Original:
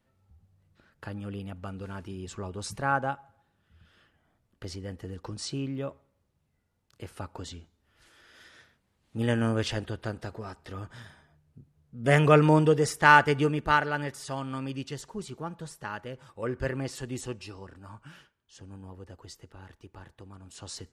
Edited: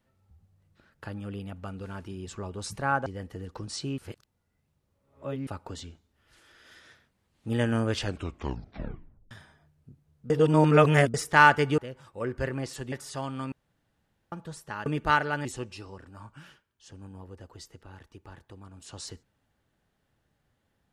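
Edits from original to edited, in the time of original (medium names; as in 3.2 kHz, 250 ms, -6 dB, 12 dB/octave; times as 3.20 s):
3.06–4.75 s: delete
5.67–7.16 s: reverse
9.69 s: tape stop 1.31 s
11.99–12.83 s: reverse
13.47–14.06 s: swap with 16.00–17.14 s
14.66–15.46 s: room tone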